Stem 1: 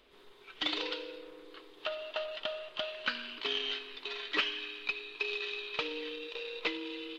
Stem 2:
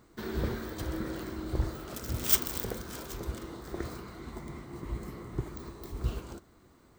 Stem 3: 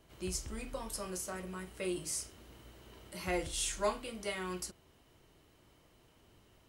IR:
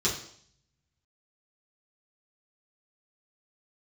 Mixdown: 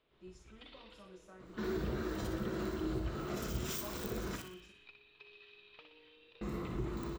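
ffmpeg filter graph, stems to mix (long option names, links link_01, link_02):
-filter_complex "[0:a]lowpass=4200,acompressor=threshold=-48dB:ratio=2,volume=-14dB,asplit=2[link_01][link_02];[link_02]volume=-7dB[link_03];[1:a]acompressor=threshold=-33dB:ratio=6,adelay=1400,volume=2dB,asplit=3[link_04][link_05][link_06];[link_04]atrim=end=4.36,asetpts=PTS-STARTPTS,afade=type=out:start_time=4.356:duration=0.004:curve=hsin[link_07];[link_05]atrim=start=4.36:end=6.41,asetpts=PTS-STARTPTS,volume=0[link_08];[link_06]atrim=start=6.41,asetpts=PTS-STARTPTS,afade=type=in:duration=0.004:curve=hsin[link_09];[link_07][link_08][link_09]concat=n=3:v=0:a=1,asplit=3[link_10][link_11][link_12];[link_11]volume=-17.5dB[link_13];[link_12]volume=-10dB[link_14];[2:a]highshelf=frequency=4700:gain=-9.5,dynaudnorm=framelen=180:gausssize=3:maxgain=3dB,volume=-20dB,asplit=3[link_15][link_16][link_17];[link_16]volume=-15dB[link_18];[link_17]volume=-13.5dB[link_19];[link_10][link_15]amix=inputs=2:normalize=0,lowpass=frequency=4700:width=0.5412,lowpass=frequency=4700:width=1.3066,alimiter=level_in=10.5dB:limit=-24dB:level=0:latency=1:release=92,volume=-10.5dB,volume=0dB[link_20];[3:a]atrim=start_sample=2205[link_21];[link_13][link_18]amix=inputs=2:normalize=0[link_22];[link_22][link_21]afir=irnorm=-1:irlink=0[link_23];[link_03][link_14][link_19]amix=inputs=3:normalize=0,aecho=0:1:61|122|183|244|305|366:1|0.42|0.176|0.0741|0.0311|0.0131[link_24];[link_01][link_20][link_23][link_24]amix=inputs=4:normalize=0"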